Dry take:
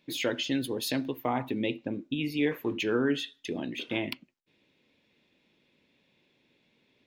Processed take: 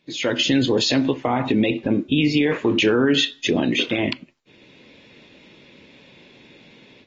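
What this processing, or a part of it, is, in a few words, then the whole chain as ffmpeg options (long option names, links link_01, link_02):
low-bitrate web radio: -af "dynaudnorm=framelen=280:gausssize=3:maxgain=16dB,alimiter=limit=-12.5dB:level=0:latency=1:release=68,volume=3dB" -ar 32000 -c:a aac -b:a 24k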